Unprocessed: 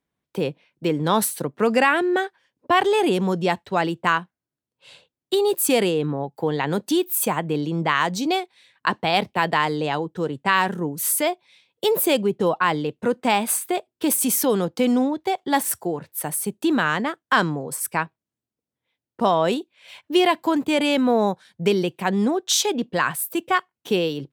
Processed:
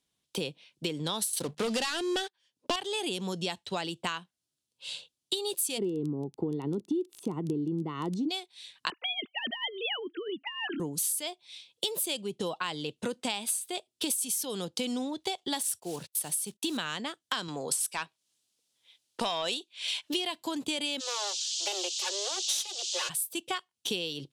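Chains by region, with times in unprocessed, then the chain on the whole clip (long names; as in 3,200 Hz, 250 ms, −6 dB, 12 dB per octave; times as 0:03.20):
0:01.33–0:02.76: mains-hum notches 50/100/150/200 Hz + leveller curve on the samples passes 3
0:05.77–0:08.28: Savitzky-Golay smoothing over 65 samples + low shelf with overshoot 470 Hz +8 dB, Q 3 + surface crackle 14 per second −28 dBFS
0:08.90–0:10.80: three sine waves on the formant tracks + flat-topped bell 700 Hz −13 dB 1.2 octaves + compressor whose output falls as the input rises −30 dBFS, ratio −0.5
0:15.68–0:16.79: one scale factor per block 5 bits + noise gate −45 dBFS, range −27 dB
0:17.48–0:20.14: high-shelf EQ 3,800 Hz +11 dB + mid-hump overdrive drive 14 dB, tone 2,600 Hz, clips at −3.5 dBFS
0:20.99–0:23.08: lower of the sound and its delayed copy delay 3.5 ms + Butterworth high-pass 360 Hz 96 dB per octave + noise in a band 2,800–7,200 Hz −38 dBFS
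whole clip: flat-topped bell 5,600 Hz +14.5 dB 2.3 octaves; downward compressor 6 to 1, threshold −26 dBFS; level −4 dB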